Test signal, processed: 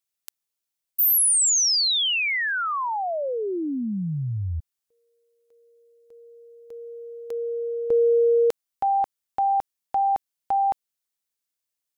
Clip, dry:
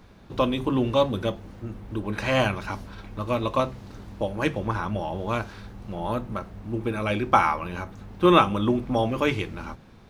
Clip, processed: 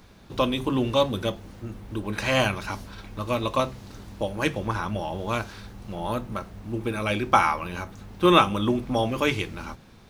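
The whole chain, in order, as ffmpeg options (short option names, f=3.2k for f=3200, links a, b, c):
-af "highshelf=f=3.2k:g=8.5,volume=-1dB"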